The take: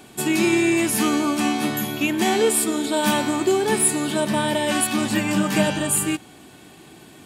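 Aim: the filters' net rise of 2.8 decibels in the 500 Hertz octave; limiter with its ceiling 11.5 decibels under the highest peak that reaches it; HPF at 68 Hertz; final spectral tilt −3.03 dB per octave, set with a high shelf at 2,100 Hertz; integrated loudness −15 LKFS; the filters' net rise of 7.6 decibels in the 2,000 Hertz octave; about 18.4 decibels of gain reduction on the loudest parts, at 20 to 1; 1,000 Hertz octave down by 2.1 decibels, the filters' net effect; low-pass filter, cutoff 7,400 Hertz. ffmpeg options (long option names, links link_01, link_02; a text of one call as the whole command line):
ffmpeg -i in.wav -af "highpass=68,lowpass=7400,equalizer=frequency=500:width_type=o:gain=5,equalizer=frequency=1000:width_type=o:gain=-7.5,equalizer=frequency=2000:width_type=o:gain=9,highshelf=frequency=2100:gain=4,acompressor=threshold=-30dB:ratio=20,volume=24dB,alimiter=limit=-7dB:level=0:latency=1" out.wav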